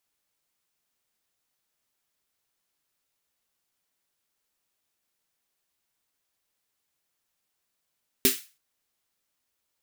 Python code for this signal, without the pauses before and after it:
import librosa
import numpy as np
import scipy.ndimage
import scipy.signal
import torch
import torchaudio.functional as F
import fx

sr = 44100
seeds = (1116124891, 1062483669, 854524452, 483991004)

y = fx.drum_snare(sr, seeds[0], length_s=0.33, hz=260.0, second_hz=390.0, noise_db=3, noise_from_hz=1700.0, decay_s=0.16, noise_decay_s=0.33)